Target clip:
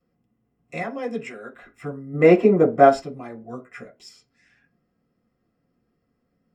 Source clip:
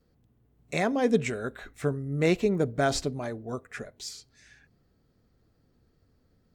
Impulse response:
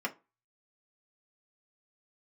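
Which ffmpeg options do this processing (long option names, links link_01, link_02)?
-filter_complex "[0:a]asettb=1/sr,asplit=3[link_01][link_02][link_03];[link_01]atrim=end=0.814[link_04];[link_02]atrim=start=0.81:end=1.55,asetpts=PTS-STARTPTS,afade=type=in:duration=0.004:curve=qsin,afade=type=out:start_time=0.736:duration=0.004:curve=qsin,highpass=frequency=440:poles=1[link_05];[link_03]atrim=start=1.546[link_06];[link_04][link_05]acrossfade=duration=0.004:curve1=hsin:curve2=qsin[link_07];[link_07][link_06]acrossfade=duration=0.004:curve1=qsin:curve2=hsin,asplit=3[link_08][link_09][link_10];[link_08]afade=type=out:start_time=2.13:duration=0.02[link_11];[link_09]equalizer=frequency=590:width=0.31:gain=14,afade=type=in:start_time=2.13:duration=0.02,afade=type=out:start_time=2.88:duration=0.02[link_12];[link_10]afade=type=in:start_time=2.88:duration=0.02[link_13];[link_11][link_12][link_13]amix=inputs=3:normalize=0,asettb=1/sr,asplit=3[link_14][link_15][link_16];[link_14]atrim=end=3.404[link_17];[link_15]atrim=start=3.4:end=3.89,asetpts=PTS-STARTPTS,afade=type=in:duration=0.004:curve=qsin,afade=type=out:start_time=0.486:duration=0.004:curve=qsin,asplit=2[link_18][link_19];[link_19]adelay=16,volume=-5dB[link_20];[link_18][link_20]amix=inputs=2:normalize=0,atrim=end_sample=21609[link_21];[link_16]atrim=start=3.886[link_22];[link_17][link_21]acrossfade=duration=0.004:curve1=hsin:curve2=qsin[link_23];[link_23][link_22]acrossfade=duration=0.004:curve1=qsin:curve2=hsin[link_24];[1:a]atrim=start_sample=2205,atrim=end_sample=6174[link_25];[link_24][link_25]afir=irnorm=-1:irlink=0,volume=-6.5dB"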